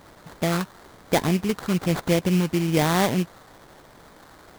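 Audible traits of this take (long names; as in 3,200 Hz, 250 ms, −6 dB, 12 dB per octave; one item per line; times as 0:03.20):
a quantiser's noise floor 8 bits, dither triangular
phaser sweep stages 6, 1.1 Hz, lowest notch 680–1,700 Hz
aliases and images of a low sample rate 2,700 Hz, jitter 20%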